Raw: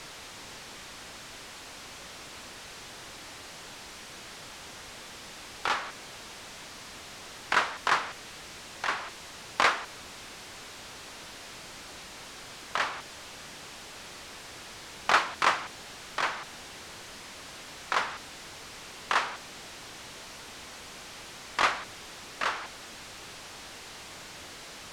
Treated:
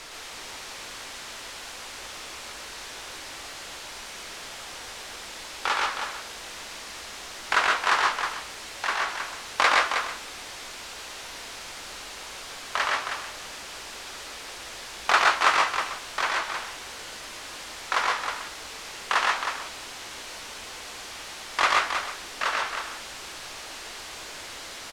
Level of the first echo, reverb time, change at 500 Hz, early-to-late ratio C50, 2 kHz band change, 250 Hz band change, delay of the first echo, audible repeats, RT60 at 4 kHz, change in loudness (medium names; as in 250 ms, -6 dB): -3.5 dB, no reverb, +4.0 dB, no reverb, +5.5 dB, +0.5 dB, 117 ms, 3, no reverb, +5.5 dB